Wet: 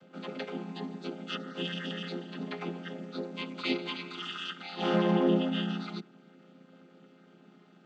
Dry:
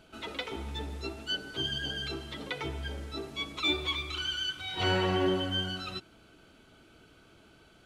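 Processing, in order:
channel vocoder with a chord as carrier minor triad, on F3
level +2 dB

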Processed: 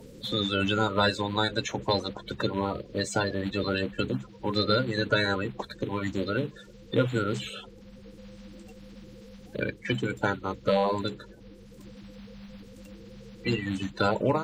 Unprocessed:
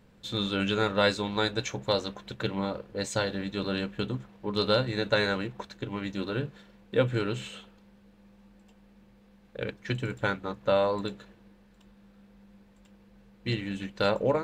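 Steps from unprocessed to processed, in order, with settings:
spectral magnitudes quantised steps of 30 dB
multiband upward and downward compressor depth 40%
level +2.5 dB

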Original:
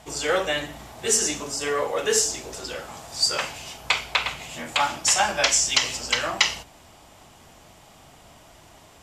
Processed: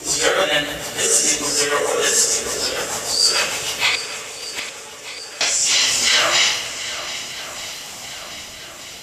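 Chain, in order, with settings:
random phases in long frames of 200 ms
spectral tilt +2 dB per octave
in parallel at +2 dB: downward compressor, threshold −32 dBFS, peak gain reduction 18.5 dB
on the sum: brickwall limiter −10 dBFS, peak gain reduction 7.5 dB
rotating-speaker cabinet horn 6.7 Hz, later 0.6 Hz, at 0:04.76
0:03.95–0:05.41: gate with flip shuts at −19 dBFS, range −27 dB
on a send: feedback echo with a long and a short gap by turns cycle 1,232 ms, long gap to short 1.5 to 1, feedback 51%, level −13.5 dB
on the sum: spring reverb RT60 3 s, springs 59 ms, chirp 65 ms, DRR 11 dB
level +6 dB

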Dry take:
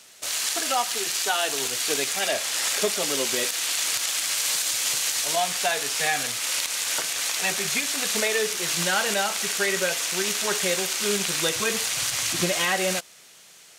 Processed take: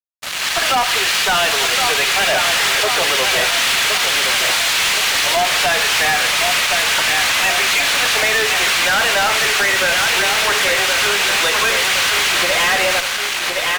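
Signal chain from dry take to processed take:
downward compressor, threshold −27 dBFS, peak gain reduction 9 dB
three-way crossover with the lows and the highs turned down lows −22 dB, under 490 Hz, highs −17 dB, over 3,700 Hz
on a send: repeating echo 1,067 ms, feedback 49%, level −7.5 dB
on the sum: automatic gain control gain up to 11.5 dB
low-shelf EQ 280 Hz −10 dB
fuzz pedal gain 29 dB, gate −38 dBFS

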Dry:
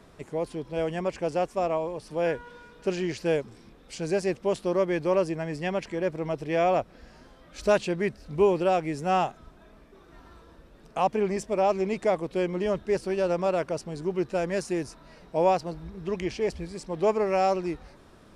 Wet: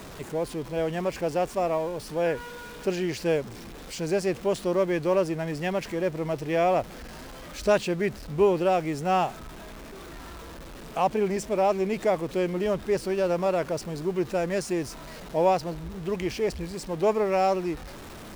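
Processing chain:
converter with a step at zero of −38.5 dBFS

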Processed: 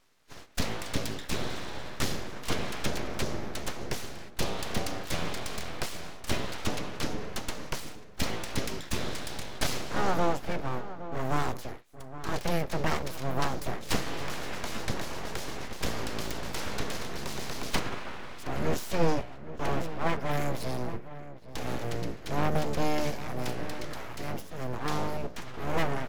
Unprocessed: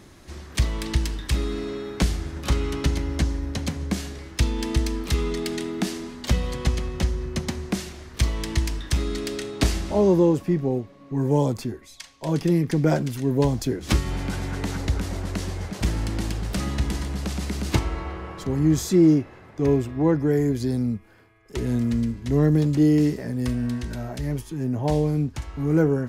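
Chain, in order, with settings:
ceiling on every frequency bin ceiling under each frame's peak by 14 dB
mains-hum notches 60/120/180/240/300/360/420 Hz
noise gate −38 dBFS, range −12 dB
parametric band 8,700 Hz −13 dB 0.33 octaves
full-wave rectification
slap from a distant wall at 140 metres, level −13 dB
level −5 dB

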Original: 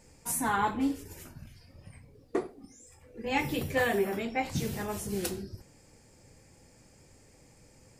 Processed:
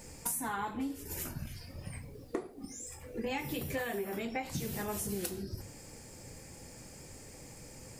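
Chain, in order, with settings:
high-shelf EQ 11,000 Hz +10.5 dB
mains-hum notches 50/100 Hz
downward compressor 10 to 1, threshold −41 dBFS, peak gain reduction 18 dB
level +7.5 dB

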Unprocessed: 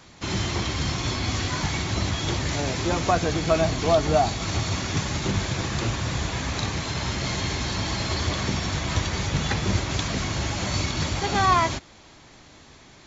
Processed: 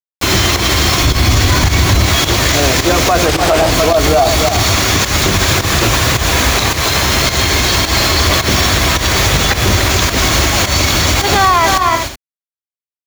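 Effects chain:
notch filter 870 Hz, Q 12
bit-depth reduction 6 bits, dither none
parametric band 160 Hz −9.5 dB 1.4 octaves
multi-tap delay 294/366 ms −8/−15 dB
fake sidechain pumping 107 BPM, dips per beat 1, −11 dB, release 180 ms
0:01.02–0:02.06: low-shelf EQ 210 Hz +10.5 dB
boost into a limiter +19 dB
0:03.26–0:03.71: highs frequency-modulated by the lows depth 0.57 ms
level −1 dB

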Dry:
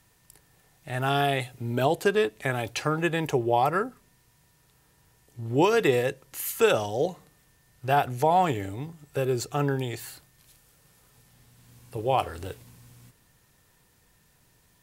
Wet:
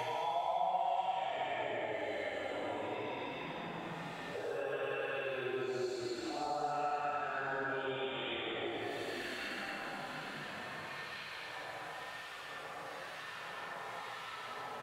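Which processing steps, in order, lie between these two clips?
LFO wah 5 Hz 640–3,800 Hz, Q 3.1
extreme stretch with random phases 5×, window 0.25 s, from 0:08.19
on a send: echo with shifted repeats 426 ms, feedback 52%, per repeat −49 Hz, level −14 dB
on the sum: multiband upward and downward compressor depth 100%
level +1 dB

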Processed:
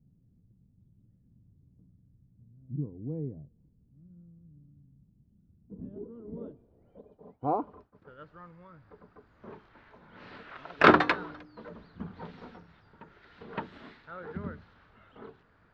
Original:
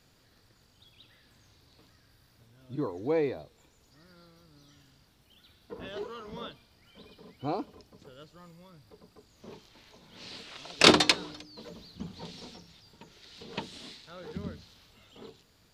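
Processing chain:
0:07.01–0:08.21: downward expander −48 dBFS
low-pass filter sweep 180 Hz → 1,500 Hz, 0:05.62–0:08.05

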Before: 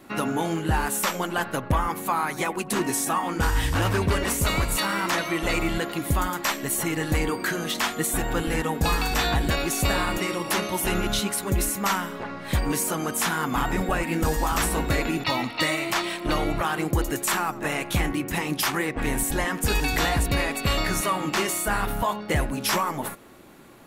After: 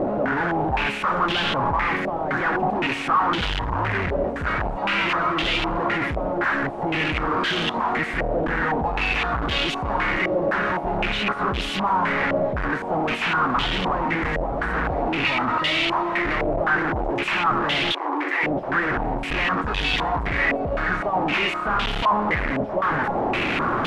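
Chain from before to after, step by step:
sign of each sample alone
0:17.92–0:18.43: Chebyshev high-pass with heavy ripple 280 Hz, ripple 3 dB
low-pass on a step sequencer 3.9 Hz 620–3,200 Hz

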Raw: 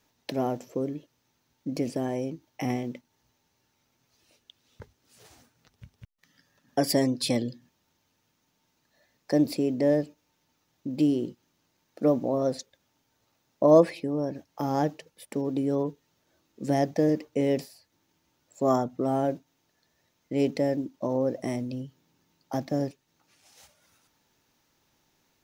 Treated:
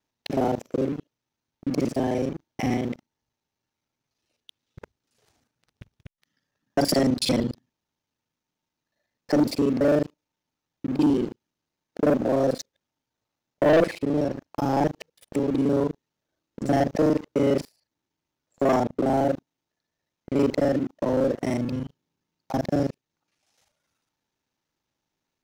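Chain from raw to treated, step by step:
reversed piece by piece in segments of 37 ms
high-shelf EQ 10,000 Hz −8 dB
leveller curve on the samples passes 3
level −5.5 dB

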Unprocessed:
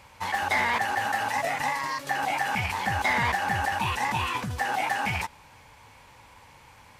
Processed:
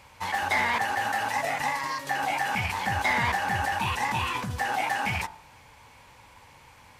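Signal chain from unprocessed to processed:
hum removal 52.36 Hz, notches 37

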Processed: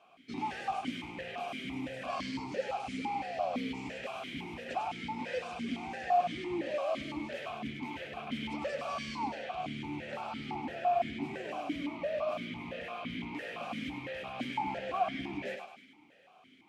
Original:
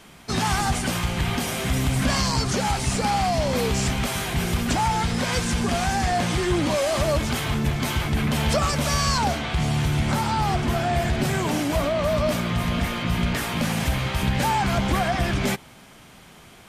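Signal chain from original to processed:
on a send: feedback echo with a high-pass in the loop 101 ms, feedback 52%, high-pass 420 Hz, level −5 dB
on the sum: formant filter that steps through the vowels 5.9 Hz
level −2 dB

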